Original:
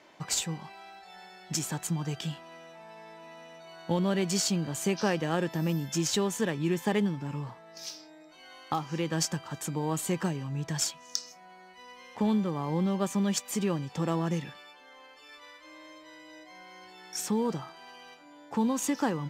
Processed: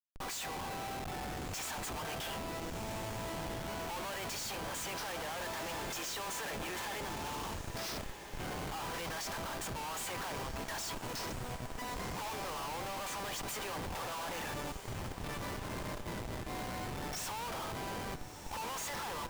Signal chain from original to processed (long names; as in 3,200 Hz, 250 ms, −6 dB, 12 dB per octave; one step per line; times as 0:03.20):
high-pass filter 710 Hz 24 dB per octave
high-shelf EQ 4,000 Hz −6 dB
comparator with hysteresis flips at −49 dBFS
feedback delay with all-pass diffusion 1,312 ms, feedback 46%, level −9.5 dB
level +1.5 dB